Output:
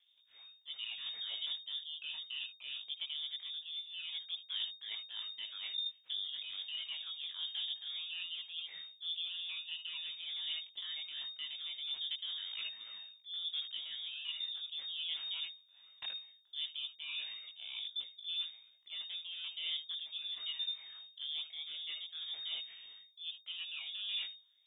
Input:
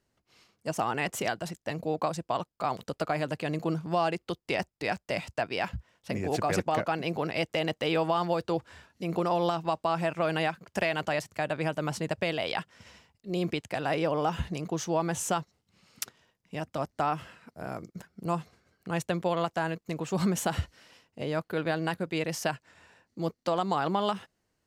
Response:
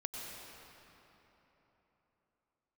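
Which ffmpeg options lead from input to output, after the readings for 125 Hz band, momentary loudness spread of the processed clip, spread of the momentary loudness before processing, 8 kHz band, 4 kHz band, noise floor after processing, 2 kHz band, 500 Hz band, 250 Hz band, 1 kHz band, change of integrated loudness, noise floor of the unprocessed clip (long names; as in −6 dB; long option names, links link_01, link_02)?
below −40 dB, 6 LU, 11 LU, below −40 dB, +5.0 dB, −67 dBFS, −13.5 dB, below −40 dB, below −40 dB, −35.5 dB, −9.0 dB, −80 dBFS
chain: -filter_complex "[1:a]atrim=start_sample=2205,atrim=end_sample=4410,asetrate=52920,aresample=44100[link_01];[0:a][link_01]afir=irnorm=-1:irlink=0,acrossover=split=1600[link_02][link_03];[link_03]aeval=exprs='abs(val(0))':channel_layout=same[link_04];[link_02][link_04]amix=inputs=2:normalize=0,flanger=delay=18:depth=2.8:speed=0.22,areverse,acompressor=threshold=-49dB:ratio=16,areverse,aphaser=in_gain=1:out_gain=1:delay=1.3:decay=0.45:speed=0.66:type=triangular,lowpass=frequency=3100:width_type=q:width=0.5098,lowpass=frequency=3100:width_type=q:width=0.6013,lowpass=frequency=3100:width_type=q:width=0.9,lowpass=frequency=3100:width_type=q:width=2.563,afreqshift=-3700,volume=9dB"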